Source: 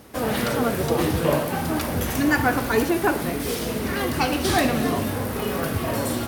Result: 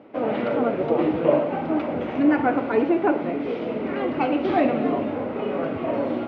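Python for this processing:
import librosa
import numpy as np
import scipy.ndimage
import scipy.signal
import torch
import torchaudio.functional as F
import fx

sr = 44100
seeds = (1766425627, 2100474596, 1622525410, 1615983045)

y = fx.cabinet(x, sr, low_hz=220.0, low_slope=12, high_hz=2400.0, hz=(300.0, 590.0, 1100.0, 1700.0), db=(5, 5, -4, -10))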